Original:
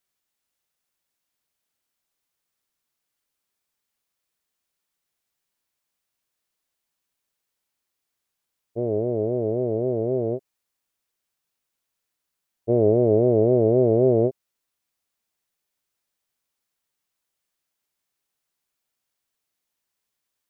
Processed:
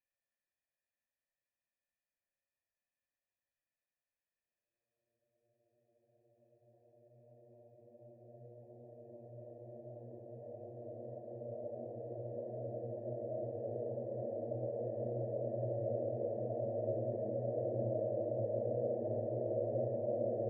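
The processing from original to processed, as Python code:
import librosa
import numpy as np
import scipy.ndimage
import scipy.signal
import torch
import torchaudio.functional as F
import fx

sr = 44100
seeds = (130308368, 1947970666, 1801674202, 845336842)

y = fx.formant_cascade(x, sr, vowel='e')
y = y + 0.8 * np.pad(y, (int(1.2 * sr / 1000.0), 0))[:len(y)]
y = fx.room_shoebox(y, sr, seeds[0], volume_m3=1100.0, walls='mixed', distance_m=3.1)
y = fx.paulstretch(y, sr, seeds[1], factor=18.0, window_s=1.0, from_s=8.04)
y = y * 10.0 ** (-5.0 / 20.0)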